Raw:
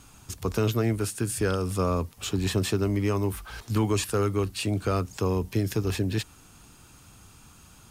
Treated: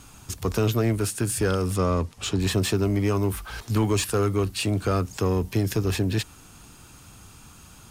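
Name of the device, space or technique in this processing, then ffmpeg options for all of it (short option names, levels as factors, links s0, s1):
parallel distortion: -filter_complex "[0:a]asettb=1/sr,asplit=3[s0][s1][s2];[s0]atrim=end=1.764[s3];[s1]atrim=start=1.76:end=2.4,asetpts=PTS-STARTPTS,afade=t=in:d=0.004:c=qsin,afade=t=out:st=0.636:d=0.004:c=qsin,lowpass=8700[s4];[s2]atrim=start=2.396[s5];[s3][s4]acrossfade=d=0.004:c1=hsin:c2=qsin[s6];[s6][s5]acrossfade=d=0.004:c1=qsin:c2=hsin,asplit=2[s7][s8];[s8]asoftclip=type=hard:threshold=0.0422,volume=0.596[s9];[s7][s9]amix=inputs=2:normalize=0"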